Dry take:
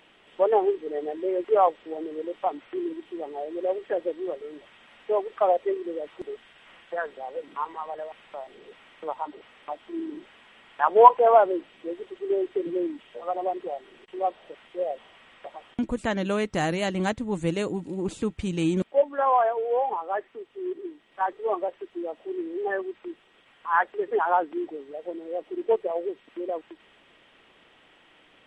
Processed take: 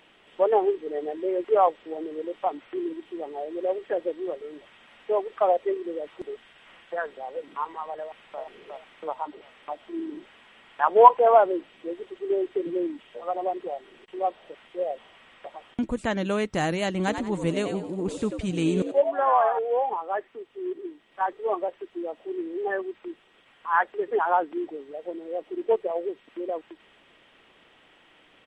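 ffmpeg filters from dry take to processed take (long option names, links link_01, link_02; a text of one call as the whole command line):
ffmpeg -i in.wav -filter_complex "[0:a]asplit=2[link_01][link_02];[link_02]afade=type=in:start_time=8.01:duration=0.01,afade=type=out:start_time=8.41:duration=0.01,aecho=0:1:360|720|1080|1440|1800:0.668344|0.267338|0.106935|0.042774|0.0171096[link_03];[link_01][link_03]amix=inputs=2:normalize=0,asettb=1/sr,asplit=3[link_04][link_05][link_06];[link_04]atrim=end=16.984[link_07];[link_05]atrim=start=16.98:end=19.59,asetpts=PTS-STARTPTS,afade=type=in:duration=0.004:curve=qsin,afade=type=out:start_time=2.606:duration=0.004:curve=qsin,asplit=5[link_08][link_09][link_10][link_11][link_12];[link_09]adelay=90,afreqshift=98,volume=-8dB[link_13];[link_10]adelay=180,afreqshift=196,volume=-17.6dB[link_14];[link_11]adelay=270,afreqshift=294,volume=-27.3dB[link_15];[link_12]adelay=360,afreqshift=392,volume=-36.9dB[link_16];[link_08][link_13][link_14][link_15][link_16]amix=inputs=5:normalize=0,atrim=end_sample=115101[link_17];[link_06]atrim=start=19.586[link_18];[link_07][link_17]acrossfade=duration=0.004:curve1=hsin:curve2=qsin[link_19];[link_19][link_18]acrossfade=duration=0.004:curve1=qsin:curve2=hsin" out.wav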